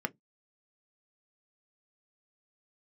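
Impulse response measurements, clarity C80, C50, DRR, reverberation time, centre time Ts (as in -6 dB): 45.0 dB, 29.5 dB, 7.5 dB, not exponential, 2 ms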